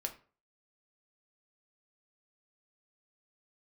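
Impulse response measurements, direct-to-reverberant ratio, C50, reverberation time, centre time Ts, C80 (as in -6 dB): 4.0 dB, 13.0 dB, 0.40 s, 9 ms, 18.5 dB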